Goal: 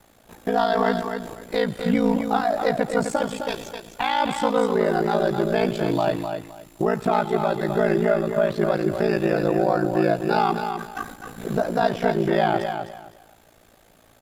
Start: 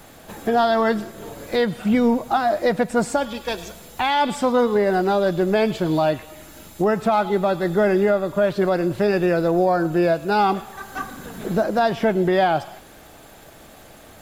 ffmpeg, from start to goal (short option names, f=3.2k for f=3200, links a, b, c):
-af "agate=range=-8dB:threshold=-35dB:ratio=16:detection=peak,aecho=1:1:257|514|771:0.447|0.0983|0.0216,aeval=exprs='val(0)*sin(2*PI*28*n/s)':c=same"